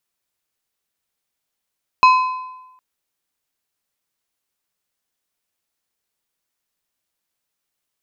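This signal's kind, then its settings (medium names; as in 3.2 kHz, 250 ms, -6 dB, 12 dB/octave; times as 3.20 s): metal hit plate, length 0.76 s, lowest mode 1.02 kHz, decay 1.02 s, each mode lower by 9 dB, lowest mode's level -5.5 dB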